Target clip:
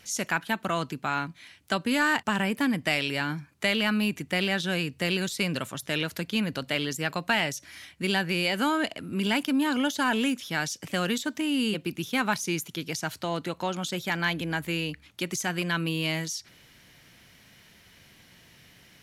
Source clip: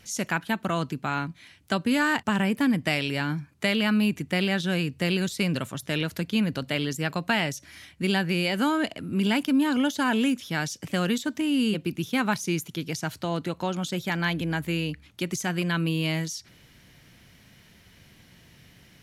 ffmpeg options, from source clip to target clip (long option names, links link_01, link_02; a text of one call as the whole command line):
ffmpeg -i in.wav -filter_complex "[0:a]lowshelf=frequency=320:gain=-7.5,asplit=2[link_01][link_02];[link_02]asoftclip=type=tanh:threshold=-19.5dB,volume=-9.5dB[link_03];[link_01][link_03]amix=inputs=2:normalize=0,volume=-1dB" out.wav